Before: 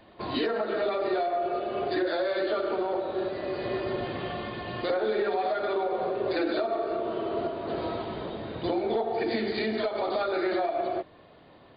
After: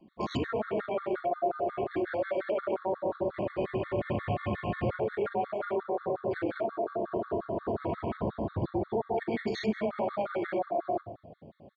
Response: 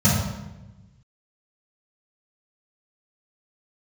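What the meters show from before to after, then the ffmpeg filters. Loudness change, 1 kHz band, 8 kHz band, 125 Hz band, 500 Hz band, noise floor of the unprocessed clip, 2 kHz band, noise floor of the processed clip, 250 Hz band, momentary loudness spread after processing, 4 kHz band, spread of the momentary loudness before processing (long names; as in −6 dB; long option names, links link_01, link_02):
−3.0 dB, −3.0 dB, can't be measured, +5.5 dB, −3.5 dB, −54 dBFS, −4.5 dB, −55 dBFS, −2.0 dB, 2 LU, −10.0 dB, 6 LU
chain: -filter_complex "[0:a]alimiter=level_in=1.5dB:limit=-24dB:level=0:latency=1:release=106,volume=-1.5dB,asplit=5[link_01][link_02][link_03][link_04][link_05];[link_02]adelay=228,afreqshift=-32,volume=-21dB[link_06];[link_03]adelay=456,afreqshift=-64,volume=-26.4dB[link_07];[link_04]adelay=684,afreqshift=-96,volume=-31.7dB[link_08];[link_05]adelay=912,afreqshift=-128,volume=-37.1dB[link_09];[link_01][link_06][link_07][link_08][link_09]amix=inputs=5:normalize=0,afwtdn=0.00631,asplit=2[link_10][link_11];[1:a]atrim=start_sample=2205[link_12];[link_11][link_12]afir=irnorm=-1:irlink=0,volume=-30dB[link_13];[link_10][link_13]amix=inputs=2:normalize=0,afftfilt=real='re*gt(sin(2*PI*5.6*pts/sr)*(1-2*mod(floor(b*sr/1024/1100),2)),0)':imag='im*gt(sin(2*PI*5.6*pts/sr)*(1-2*mod(floor(b*sr/1024/1100),2)),0)':win_size=1024:overlap=0.75,volume=4dB"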